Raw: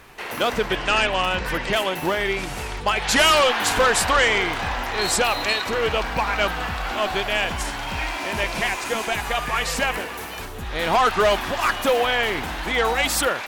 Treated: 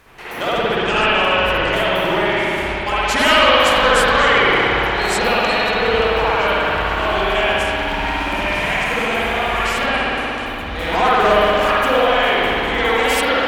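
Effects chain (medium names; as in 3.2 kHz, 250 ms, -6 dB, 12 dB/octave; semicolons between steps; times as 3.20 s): 9.86–10.46 s: low-pass 9.9 kHz 24 dB/octave; spring tank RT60 3 s, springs 58 ms, chirp 45 ms, DRR -9.5 dB; trim -4 dB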